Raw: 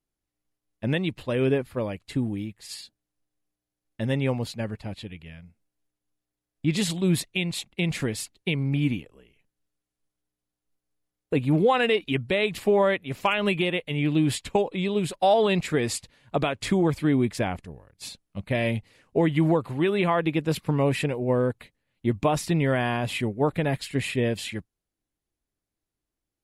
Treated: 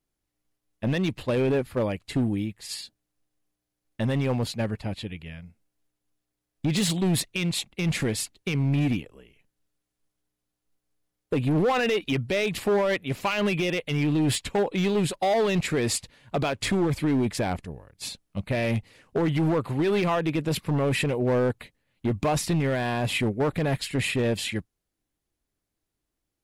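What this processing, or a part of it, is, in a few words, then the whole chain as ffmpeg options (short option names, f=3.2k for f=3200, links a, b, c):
limiter into clipper: -af "alimiter=limit=-17dB:level=0:latency=1:release=23,asoftclip=type=hard:threshold=-22.5dB,volume=3.5dB"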